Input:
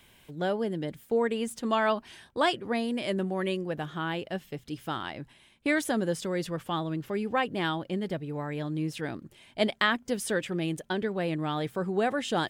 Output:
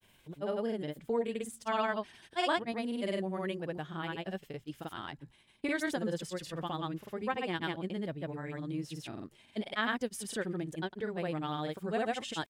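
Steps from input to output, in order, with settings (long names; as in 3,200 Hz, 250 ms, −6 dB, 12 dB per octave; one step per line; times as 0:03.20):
granular cloud, pitch spread up and down by 0 semitones
level −4.5 dB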